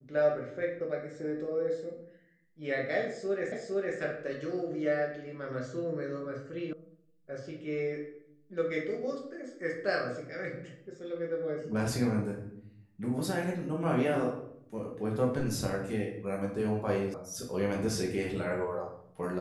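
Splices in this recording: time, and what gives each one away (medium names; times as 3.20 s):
3.52 s: repeat of the last 0.46 s
6.73 s: sound stops dead
17.14 s: sound stops dead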